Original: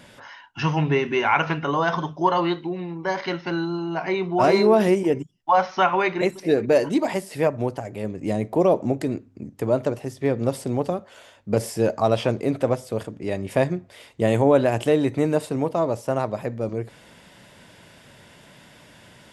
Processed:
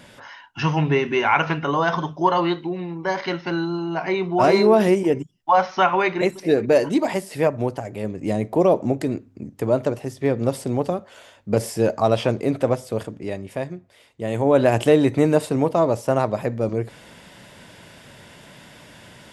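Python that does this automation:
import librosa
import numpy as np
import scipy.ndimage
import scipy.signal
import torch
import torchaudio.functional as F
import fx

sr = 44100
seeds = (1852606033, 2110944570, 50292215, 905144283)

y = fx.gain(x, sr, db=fx.line((13.14, 1.5), (13.59, -7.5), (14.22, -7.5), (14.68, 4.0)))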